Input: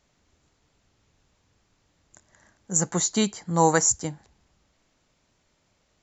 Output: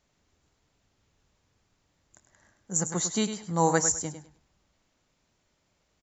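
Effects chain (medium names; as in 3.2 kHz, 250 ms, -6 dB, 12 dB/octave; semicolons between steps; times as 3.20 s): feedback delay 102 ms, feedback 22%, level -9.5 dB; trim -4.5 dB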